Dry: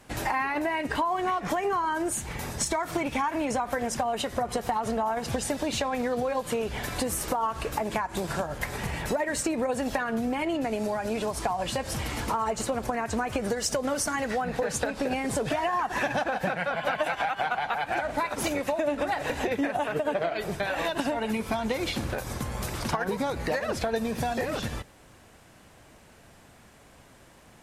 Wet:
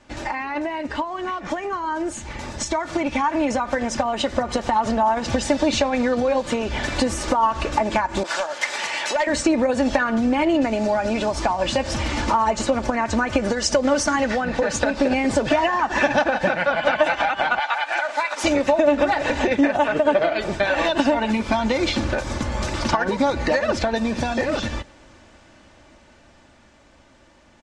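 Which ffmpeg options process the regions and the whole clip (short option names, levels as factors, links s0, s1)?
-filter_complex "[0:a]asettb=1/sr,asplit=3[s0][s1][s2];[s0]atrim=end=8.234[s3];[s1]atrim=start=8.23:end=9.27,asetpts=PTS-STARTPTS,afade=t=in:d=0.004:c=qsin,afade=t=out:st=1.036:d=0.004:c=qsin,highpass=640,volume=20,asoftclip=hard,volume=0.0501,adynamicequalizer=threshold=0.00398:dfrequency=2000:dqfactor=0.7:tfrequency=2000:tqfactor=0.7:attack=5:release=100:ratio=0.375:range=3:mode=boostabove:tftype=highshelf[s4];[s2]atrim=start=9.266[s5];[s3][s4]acrossfade=d=0.004:c1=hsin:c2=qsin[s6];[s6][s5]acrossfade=d=0.004:c1=qsin:c2=hsin,asettb=1/sr,asplit=3[s7][s8][s9];[s7]atrim=end=17.594[s10];[s8]atrim=start=17.59:end=18.44,asetpts=PTS-STARTPTS,afade=t=in:d=0.004:c=qsin,afade=t=out:st=0.846:d=0.004:c=qsin,highpass=840,highshelf=f=8900:g=7.5[s11];[s9]atrim=start=18.436[s12];[s10][s11]acrossfade=d=0.004:c1=hsin:c2=qsin[s13];[s13][s12]acrossfade=d=0.004:c1=qsin:c2=hsin,dynaudnorm=f=500:g=13:m=2.37,lowpass=f=6900:w=0.5412,lowpass=f=6900:w=1.3066,aecho=1:1:3.4:0.49"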